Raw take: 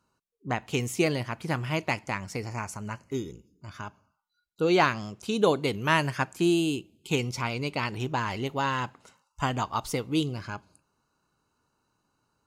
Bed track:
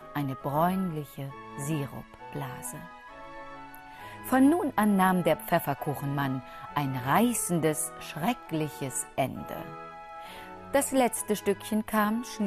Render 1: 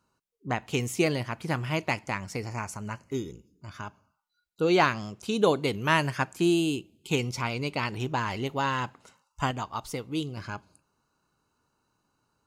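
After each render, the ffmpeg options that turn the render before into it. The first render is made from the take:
-filter_complex "[0:a]asplit=3[a][b][c];[a]atrim=end=9.512[d];[b]atrim=start=9.508:end=10.372,asetpts=PTS-STARTPTS,volume=-4.5dB[e];[c]atrim=start=10.368[f];[d][e]acrossfade=d=0.004:c1=hsin:c2=hsin[g];[g][f]acrossfade=d=0.004:c1=hsin:c2=hsin"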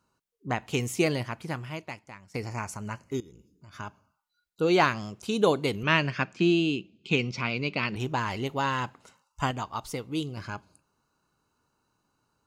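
-filter_complex "[0:a]asettb=1/sr,asplit=3[a][b][c];[a]atrim=end=3.204[d];[b]atrim=start=3.2:end=3.73,asetpts=PTS-STARTPTS,afade=t=in:d=0.004:c=qsin,afade=t=out:st=0.526:d=0.004:c=qsin,acompressor=threshold=-47dB:ratio=6:attack=3.2:release=140:knee=1:detection=peak[e];[c]atrim=start=3.726[f];[d][e]acrossfade=d=0.004:c1=hsin:c2=qsin[g];[g][f]acrossfade=d=0.004:c1=qsin:c2=hsin,asettb=1/sr,asplit=3[h][i][j];[h]atrim=end=5.834[k];[i]atrim=start=5.83:end=7.96,asetpts=PTS-STARTPTS,afade=t=in:d=0.004:c=qsin,afade=t=out:st=2.126:d=0.004:c=qsin,highpass=100,equalizer=f=200:t=q:w=4:g=7,equalizer=f=870:t=q:w=4:g=-7,equalizer=f=2.5k:t=q:w=4:g=6,lowpass=f=5.4k:w=0.5412,lowpass=f=5.4k:w=1.3066[l];[j]atrim=start=7.956[m];[k][l]acrossfade=d=0.004:c1=hsin:c2=qsin[n];[n][m]acrossfade=d=0.004:c1=qsin:c2=hsin,asplit=2[o][p];[o]atrim=end=2.34,asetpts=PTS-STARTPTS,afade=t=out:st=1.22:d=1.12:c=qua:silence=0.158489[q];[p]atrim=start=2.34,asetpts=PTS-STARTPTS,afade=t=in:d=0.004:c=hsin:silence=0.158489[r];[q][r]concat=n=2:v=0:a=1"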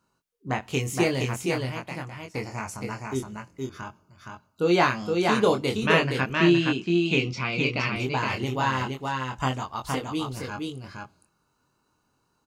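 -filter_complex "[0:a]asplit=2[a][b];[b]adelay=23,volume=-4dB[c];[a][c]amix=inputs=2:normalize=0,asplit=2[d][e];[e]aecho=0:1:468:0.668[f];[d][f]amix=inputs=2:normalize=0"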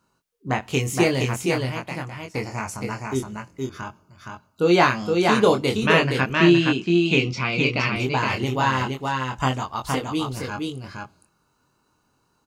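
-af "volume=4dB,alimiter=limit=-3dB:level=0:latency=1"

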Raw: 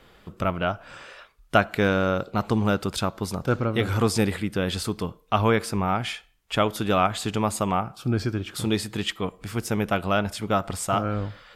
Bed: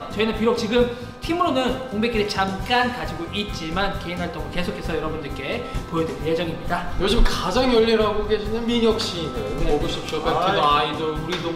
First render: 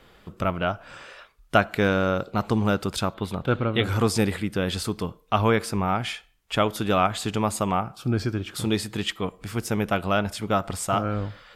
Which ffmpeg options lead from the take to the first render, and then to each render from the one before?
-filter_complex "[0:a]asettb=1/sr,asplit=3[a][b][c];[a]atrim=end=3.144[d];[b]atrim=start=3.14:end=3.84,asetpts=PTS-STARTPTS,afade=t=in:d=0.004:c=qsin,afade=t=out:st=0.696:d=0.004:c=qsin,highshelf=f=4.4k:t=q:w=3:g=-7.5[e];[c]atrim=start=3.836[f];[d][e]acrossfade=d=0.004:c1=hsin:c2=qsin[g];[g][f]acrossfade=d=0.004:c1=qsin:c2=hsin"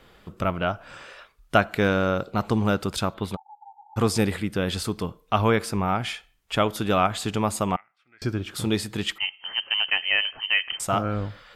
-filter_complex "[0:a]asplit=3[a][b][c];[a]afade=t=out:st=3.35:d=0.02[d];[b]asuperpass=centerf=840:order=12:qfactor=6.1,afade=t=in:st=3.35:d=0.02,afade=t=out:st=3.96:d=0.02[e];[c]afade=t=in:st=3.96:d=0.02[f];[d][e][f]amix=inputs=3:normalize=0,asettb=1/sr,asplit=3[g][h][i];[g]atrim=end=7.764[j];[h]atrim=start=7.76:end=8.22,asetpts=PTS-STARTPTS,afade=t=in:d=0.004:c=qsin,afade=t=out:st=0.456:d=0.004:c=qsin,bandpass=f=2k:t=q:w=14[k];[i]atrim=start=8.216[l];[j][k]acrossfade=d=0.004:c1=hsin:c2=qsin[m];[m][l]acrossfade=d=0.004:c1=qsin:c2=hsin,asettb=1/sr,asplit=3[n][o][p];[n]atrim=end=9.184[q];[o]atrim=start=9.18:end=10.8,asetpts=PTS-STARTPTS,afade=t=in:d=0.004:c=qsin,afade=t=out:st=1.616:d=0.004:c=qsin,lowpass=f=2.7k:t=q:w=0.5098,lowpass=f=2.7k:t=q:w=0.6013,lowpass=f=2.7k:t=q:w=0.9,lowpass=f=2.7k:t=q:w=2.563,afreqshift=-3200[r];[p]atrim=start=10.796[s];[q][r]acrossfade=d=0.004:c1=hsin:c2=qsin[t];[t][s]acrossfade=d=0.004:c1=qsin:c2=hsin"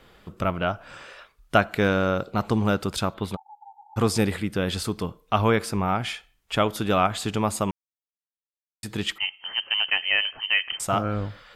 -filter_complex "[0:a]asplit=3[a][b][c];[a]atrim=end=7.71,asetpts=PTS-STARTPTS,afade=t=out:st=7.706:d=0.004:c=hsin[d];[b]atrim=start=7.71:end=8.83,asetpts=PTS-STARTPTS,volume=0[e];[c]atrim=start=8.83,asetpts=PTS-STARTPTS,afade=t=in:d=0.004:c=hsin[f];[d][e][f]concat=n=3:v=0:a=1"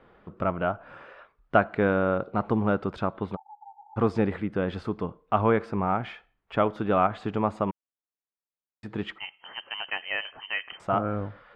-af "lowpass=1.5k,lowshelf=f=110:g=-9"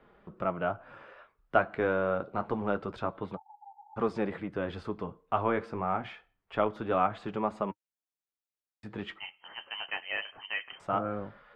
-filter_complex "[0:a]flanger=delay=4.8:depth=7.7:regen=-48:speed=0.26:shape=sinusoidal,acrossover=split=280[a][b];[a]asoftclip=type=tanh:threshold=-37.5dB[c];[c][b]amix=inputs=2:normalize=0"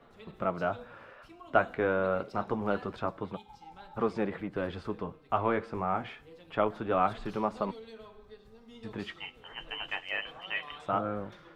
-filter_complex "[1:a]volume=-30.5dB[a];[0:a][a]amix=inputs=2:normalize=0"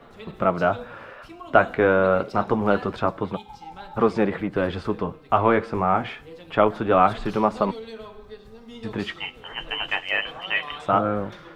-af "volume=10dB,alimiter=limit=-3dB:level=0:latency=1"

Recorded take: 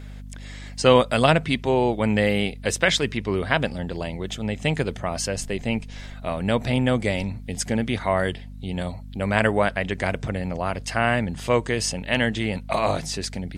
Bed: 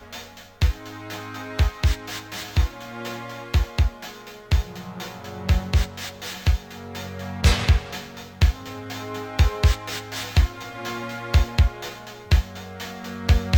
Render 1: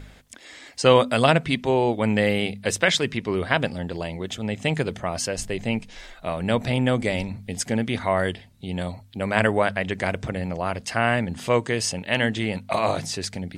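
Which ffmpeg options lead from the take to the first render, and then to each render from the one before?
-af "bandreject=f=50:t=h:w=4,bandreject=f=100:t=h:w=4,bandreject=f=150:t=h:w=4,bandreject=f=200:t=h:w=4,bandreject=f=250:t=h:w=4"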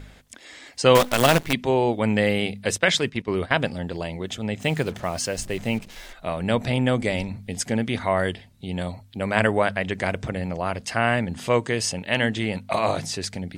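-filter_complex "[0:a]asettb=1/sr,asplit=3[a][b][c];[a]atrim=end=0.954[d];[b]atrim=start=0.95:end=1.53,asetpts=PTS-STARTPTS,afade=t=in:d=0.004:c=qsin,afade=t=out:st=0.576:d=0.004:c=qsin,acrusher=bits=4:dc=4:mix=0:aa=0.000001[e];[c]atrim=start=1.526[f];[d][e]acrossfade=d=0.004:c1=hsin:c2=qsin[g];[g][f]acrossfade=d=0.004:c1=qsin:c2=hsin,asplit=3[h][i][j];[h]afade=t=out:st=2.75:d=0.02[k];[i]agate=range=-11dB:threshold=-31dB:ratio=16:release=100:detection=peak,afade=t=in:st=2.75:d=0.02,afade=t=out:st=3.52:d=0.02[l];[j]afade=t=in:st=3.52:d=0.02[m];[k][l][m]amix=inputs=3:normalize=0,asettb=1/sr,asplit=3[n][o][p];[n]atrim=end=4.604[q];[o]atrim=start=4.6:end=6.13,asetpts=PTS-STARTPTS,afade=t=in:d=0.004:c=qsin,afade=t=out:st=1.526:d=0.004:c=qsin,acrusher=bits=6:mix=0:aa=0.5[r];[p]atrim=start=6.126[s];[q][r]acrossfade=d=0.004:c1=hsin:c2=qsin[t];[t][s]acrossfade=d=0.004:c1=qsin:c2=hsin"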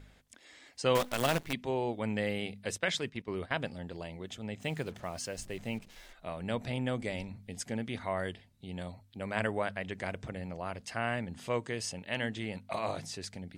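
-af "volume=-12dB"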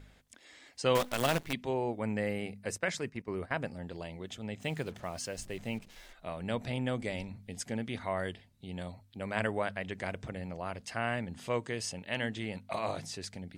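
-filter_complex "[0:a]asettb=1/sr,asplit=3[a][b][c];[a]atrim=end=1.734[d];[b]atrim=start=1.73:end=3.83,asetpts=PTS-STARTPTS,afade=t=in:d=0.004:c=qsin,afade=t=out:st=2.096:d=0.004:c=qsin,equalizer=f=3.4k:t=o:w=0.5:g=-12.5[e];[c]atrim=start=3.826[f];[d][e]acrossfade=d=0.004:c1=hsin:c2=qsin[g];[g][f]acrossfade=d=0.004:c1=qsin:c2=hsin"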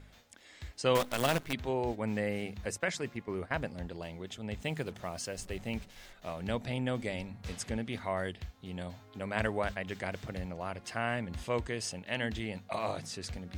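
-filter_complex "[1:a]volume=-26dB[a];[0:a][a]amix=inputs=2:normalize=0"

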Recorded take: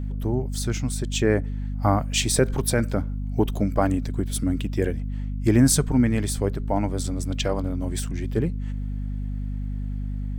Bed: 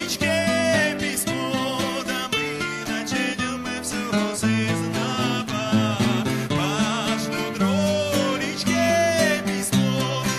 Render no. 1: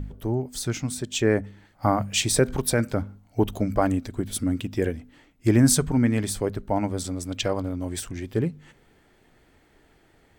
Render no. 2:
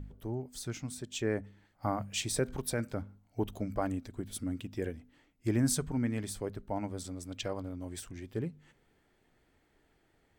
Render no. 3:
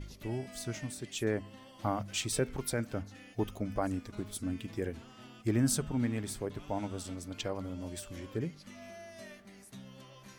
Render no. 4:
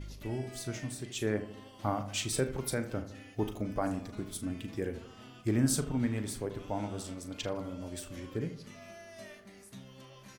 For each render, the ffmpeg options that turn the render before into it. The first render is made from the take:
-af "bandreject=f=50:t=h:w=4,bandreject=f=100:t=h:w=4,bandreject=f=150:t=h:w=4,bandreject=f=200:t=h:w=4,bandreject=f=250:t=h:w=4"
-af "volume=-11dB"
-filter_complex "[1:a]volume=-29.5dB[a];[0:a][a]amix=inputs=2:normalize=0"
-filter_complex "[0:a]asplit=2[a][b];[b]adelay=38,volume=-11dB[c];[a][c]amix=inputs=2:normalize=0,asplit=2[d][e];[e]adelay=79,lowpass=f=1.5k:p=1,volume=-11dB,asplit=2[f][g];[g]adelay=79,lowpass=f=1.5k:p=1,volume=0.53,asplit=2[h][i];[i]adelay=79,lowpass=f=1.5k:p=1,volume=0.53,asplit=2[j][k];[k]adelay=79,lowpass=f=1.5k:p=1,volume=0.53,asplit=2[l][m];[m]adelay=79,lowpass=f=1.5k:p=1,volume=0.53,asplit=2[n][o];[o]adelay=79,lowpass=f=1.5k:p=1,volume=0.53[p];[d][f][h][j][l][n][p]amix=inputs=7:normalize=0"

